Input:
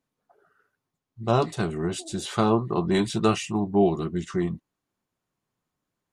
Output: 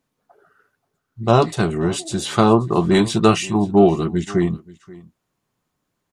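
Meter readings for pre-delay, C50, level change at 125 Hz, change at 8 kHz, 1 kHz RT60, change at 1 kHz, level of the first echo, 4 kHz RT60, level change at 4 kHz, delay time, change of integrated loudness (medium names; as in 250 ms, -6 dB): no reverb, no reverb, +7.5 dB, +7.5 dB, no reverb, +7.5 dB, -21.5 dB, no reverb, +7.5 dB, 531 ms, +7.5 dB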